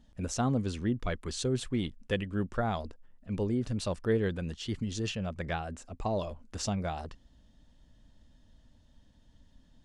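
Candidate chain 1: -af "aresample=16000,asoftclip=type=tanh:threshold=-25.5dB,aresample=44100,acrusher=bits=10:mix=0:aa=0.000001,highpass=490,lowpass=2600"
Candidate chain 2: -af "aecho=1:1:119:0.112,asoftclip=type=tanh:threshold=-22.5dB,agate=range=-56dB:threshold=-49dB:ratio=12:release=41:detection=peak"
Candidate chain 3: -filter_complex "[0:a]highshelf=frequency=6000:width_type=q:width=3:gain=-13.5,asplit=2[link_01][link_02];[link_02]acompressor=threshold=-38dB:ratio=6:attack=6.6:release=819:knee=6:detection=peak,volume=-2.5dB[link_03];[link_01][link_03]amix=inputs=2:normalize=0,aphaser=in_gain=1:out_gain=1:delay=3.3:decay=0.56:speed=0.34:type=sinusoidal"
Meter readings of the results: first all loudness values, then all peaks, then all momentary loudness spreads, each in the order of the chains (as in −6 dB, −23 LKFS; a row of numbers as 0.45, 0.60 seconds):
−42.0, −34.5, −30.5 LKFS; −23.5, −23.0, −10.5 dBFS; 9, 7, 6 LU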